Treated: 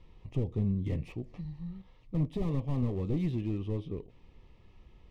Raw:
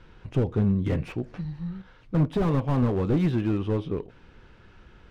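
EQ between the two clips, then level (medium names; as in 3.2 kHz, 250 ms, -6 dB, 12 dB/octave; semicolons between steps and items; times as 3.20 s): bass shelf 93 Hz +7.5 dB; dynamic bell 940 Hz, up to -6 dB, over -43 dBFS, Q 1; Butterworth band-stop 1.5 kHz, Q 2.6; -9.0 dB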